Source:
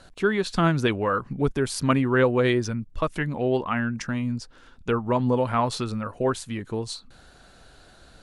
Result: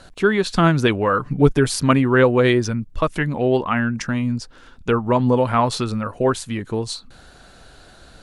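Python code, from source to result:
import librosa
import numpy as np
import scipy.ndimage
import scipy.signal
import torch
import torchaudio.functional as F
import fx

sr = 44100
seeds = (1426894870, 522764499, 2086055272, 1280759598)

y = fx.comb(x, sr, ms=6.7, depth=0.71, at=(1.19, 1.76))
y = y * librosa.db_to_amplitude(5.5)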